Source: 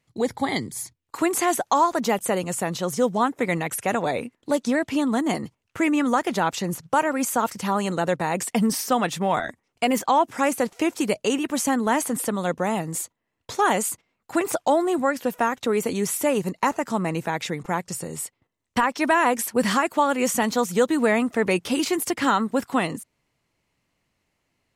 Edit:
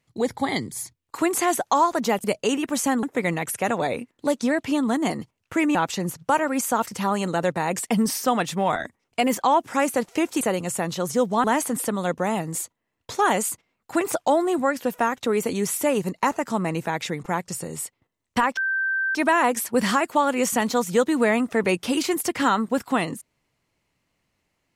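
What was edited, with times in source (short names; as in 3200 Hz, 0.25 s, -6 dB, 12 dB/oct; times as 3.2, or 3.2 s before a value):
2.24–3.27 swap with 11.05–11.84
5.99–6.39 cut
18.97 add tone 1560 Hz -21 dBFS 0.58 s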